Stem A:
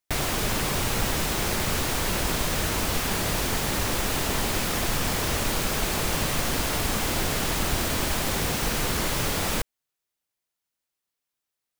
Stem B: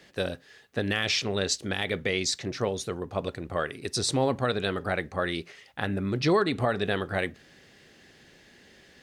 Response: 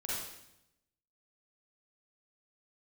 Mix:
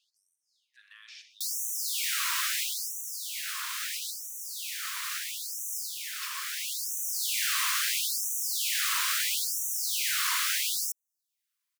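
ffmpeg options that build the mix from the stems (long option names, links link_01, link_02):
-filter_complex "[0:a]adelay=1300,volume=1.5dB[link_01];[1:a]alimiter=level_in=1dB:limit=-24dB:level=0:latency=1:release=15,volume=-1dB,volume=-8dB,afade=type=in:start_time=2.58:duration=0.52:silence=0.421697,afade=type=out:start_time=6.29:duration=0.47:silence=0.298538,asplit=3[link_02][link_03][link_04];[link_03]volume=-8.5dB[link_05];[link_04]apad=whole_len=577286[link_06];[link_01][link_06]sidechaincompress=threshold=-44dB:ratio=10:attack=16:release=1120[link_07];[2:a]atrim=start_sample=2205[link_08];[link_05][link_08]afir=irnorm=-1:irlink=0[link_09];[link_07][link_02][link_09]amix=inputs=3:normalize=0,afftfilt=real='re*gte(b*sr/1024,940*pow(5800/940,0.5+0.5*sin(2*PI*0.75*pts/sr)))':imag='im*gte(b*sr/1024,940*pow(5800/940,0.5+0.5*sin(2*PI*0.75*pts/sr)))':win_size=1024:overlap=0.75"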